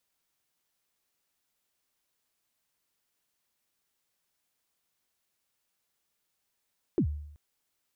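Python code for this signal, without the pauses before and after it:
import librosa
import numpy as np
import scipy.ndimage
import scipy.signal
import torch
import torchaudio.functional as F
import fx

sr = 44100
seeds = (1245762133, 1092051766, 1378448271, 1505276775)

y = fx.drum_kick(sr, seeds[0], length_s=0.38, level_db=-20, start_hz=410.0, end_hz=74.0, sweep_ms=84.0, decay_s=0.75, click=False)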